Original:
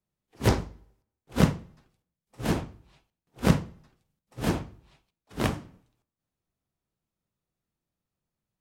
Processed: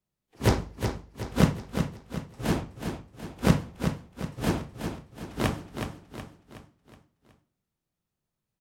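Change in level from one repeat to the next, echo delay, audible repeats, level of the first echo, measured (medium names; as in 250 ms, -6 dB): -6.5 dB, 370 ms, 5, -7.0 dB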